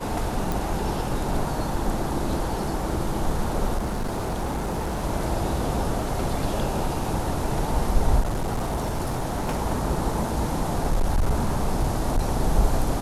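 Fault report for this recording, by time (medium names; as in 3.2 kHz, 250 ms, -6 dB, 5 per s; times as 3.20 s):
0.52 s: pop
3.77–5.04 s: clipped -23 dBFS
8.20–9.61 s: clipped -22 dBFS
10.19–12.29 s: clipped -16.5 dBFS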